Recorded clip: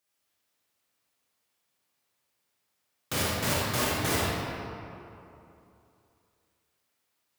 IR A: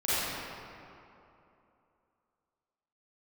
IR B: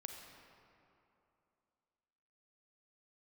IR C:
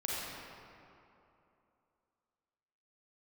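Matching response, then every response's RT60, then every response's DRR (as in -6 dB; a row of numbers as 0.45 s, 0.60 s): C; 2.9 s, 2.8 s, 2.9 s; -14.0 dB, 2.5 dB, -6.5 dB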